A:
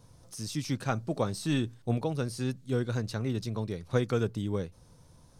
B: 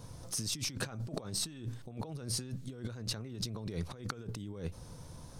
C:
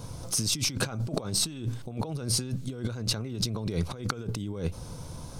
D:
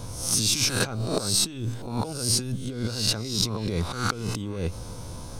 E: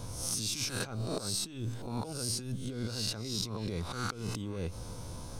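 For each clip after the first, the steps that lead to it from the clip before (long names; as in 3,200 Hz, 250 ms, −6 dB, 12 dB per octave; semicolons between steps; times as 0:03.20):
compressor whose output falls as the input rises −41 dBFS, ratio −1
notch filter 1,800 Hz, Q 8.3; level +8.5 dB
peak hold with a rise ahead of every peak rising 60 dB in 0.58 s; parametric band 150 Hz −9.5 dB 0.24 octaves; level +2 dB
downward compressor, threshold −26 dBFS, peak gain reduction 7.5 dB; level −5 dB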